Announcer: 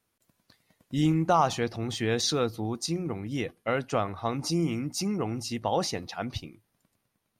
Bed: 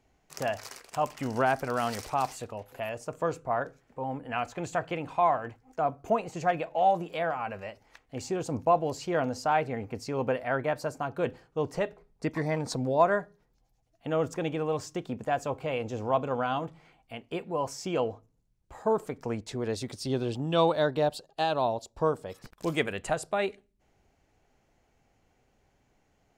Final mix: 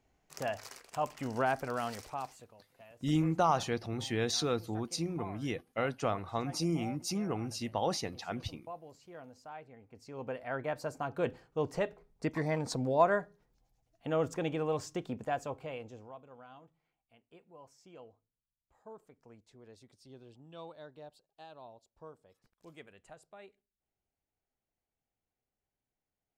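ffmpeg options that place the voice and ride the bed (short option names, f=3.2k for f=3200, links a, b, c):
-filter_complex "[0:a]adelay=2100,volume=-5dB[a];[1:a]volume=13.5dB,afade=t=out:st=1.65:d=0.93:silence=0.149624,afade=t=in:st=9.86:d=1.34:silence=0.11885,afade=t=out:st=15.02:d=1.13:silence=0.0891251[b];[a][b]amix=inputs=2:normalize=0"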